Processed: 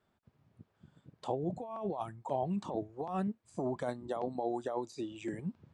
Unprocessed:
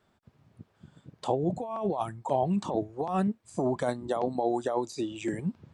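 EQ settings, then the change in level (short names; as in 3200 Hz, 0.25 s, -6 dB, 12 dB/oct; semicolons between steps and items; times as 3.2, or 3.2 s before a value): high shelf 5500 Hz -5.5 dB; -7.0 dB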